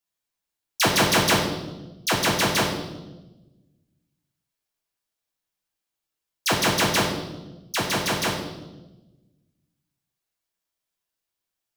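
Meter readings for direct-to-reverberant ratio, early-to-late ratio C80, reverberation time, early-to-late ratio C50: -2.5 dB, 7.5 dB, 1.1 s, 4.5 dB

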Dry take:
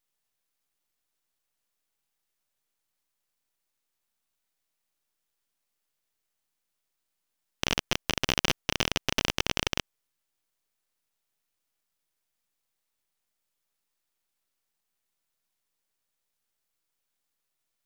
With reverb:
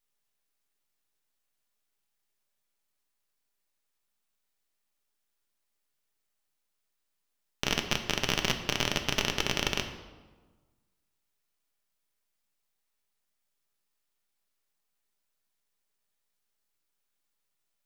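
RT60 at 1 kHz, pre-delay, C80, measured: 1.3 s, 5 ms, 10.5 dB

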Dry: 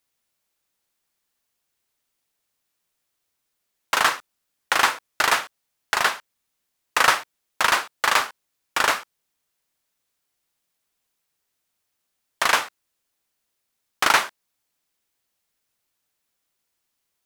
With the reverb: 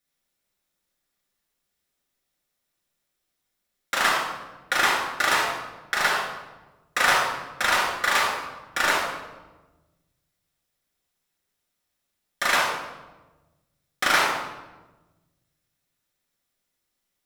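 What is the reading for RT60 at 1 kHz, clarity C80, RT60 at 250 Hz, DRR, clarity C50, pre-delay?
1.1 s, 4.5 dB, 1.7 s, -4.0 dB, 1.0 dB, 4 ms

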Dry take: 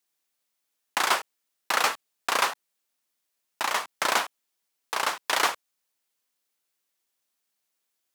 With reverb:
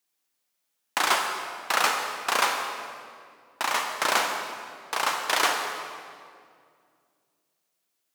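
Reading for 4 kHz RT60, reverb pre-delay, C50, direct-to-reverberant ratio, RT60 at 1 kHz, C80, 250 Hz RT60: 1.6 s, 32 ms, 4.0 dB, 3.0 dB, 2.0 s, 5.0 dB, 2.8 s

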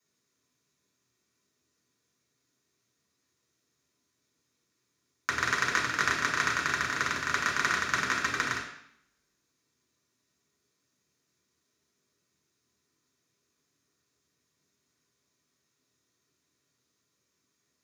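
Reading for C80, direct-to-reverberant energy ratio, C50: 8.5 dB, -5.5 dB, 5.0 dB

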